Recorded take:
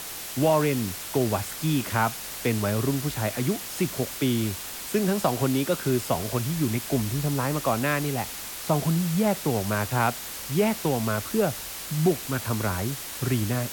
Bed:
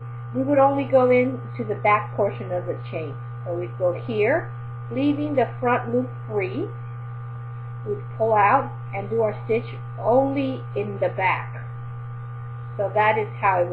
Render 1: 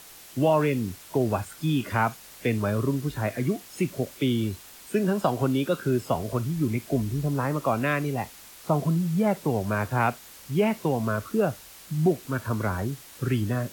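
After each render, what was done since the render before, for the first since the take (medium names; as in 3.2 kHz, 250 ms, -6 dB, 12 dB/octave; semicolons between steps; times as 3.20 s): noise print and reduce 11 dB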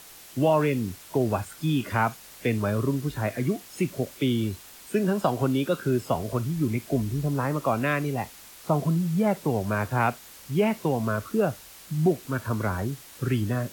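no audible change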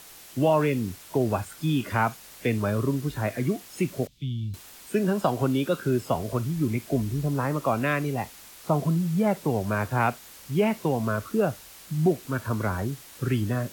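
4.07–4.54 s: FFT filter 150 Hz 0 dB, 460 Hz -30 dB, 1.5 kHz -30 dB, 3.5 kHz -9 dB, 11 kHz -24 dB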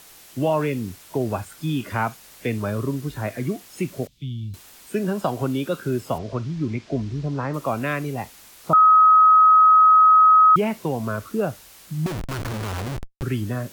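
6.18–7.54 s: low-pass 5.8 kHz 24 dB/octave; 8.73–10.56 s: bleep 1.27 kHz -9.5 dBFS; 12.06–13.23 s: Schmitt trigger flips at -36 dBFS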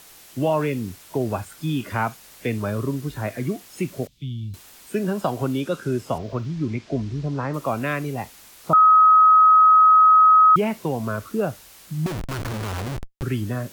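5.60–6.46 s: decimation joined by straight lines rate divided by 2×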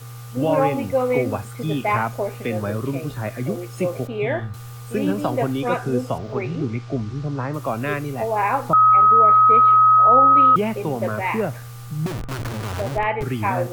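add bed -3.5 dB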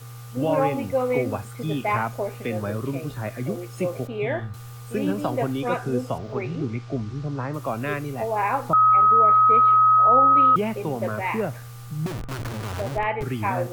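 trim -3 dB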